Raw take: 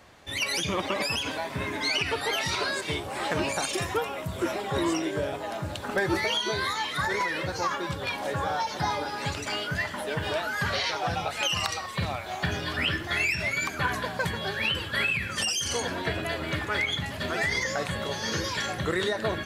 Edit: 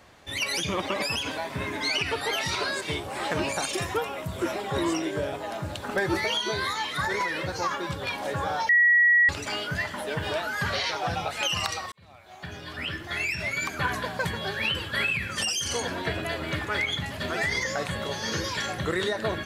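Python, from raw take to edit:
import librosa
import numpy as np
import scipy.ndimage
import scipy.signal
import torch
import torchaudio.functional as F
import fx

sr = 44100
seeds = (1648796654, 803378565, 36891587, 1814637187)

y = fx.edit(x, sr, fx.bleep(start_s=8.69, length_s=0.6, hz=1920.0, db=-15.5),
    fx.fade_in_span(start_s=11.92, length_s=1.83), tone=tone)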